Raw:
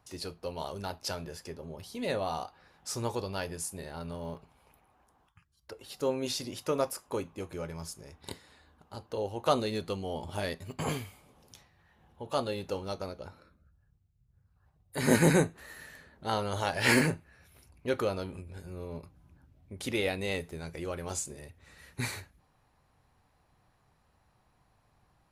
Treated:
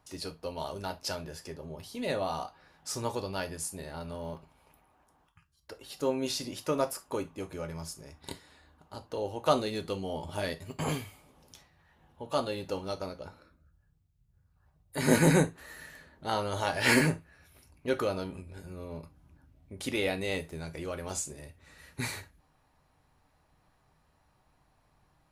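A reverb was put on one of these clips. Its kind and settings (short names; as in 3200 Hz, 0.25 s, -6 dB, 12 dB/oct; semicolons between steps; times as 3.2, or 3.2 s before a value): non-linear reverb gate 90 ms falling, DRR 8.5 dB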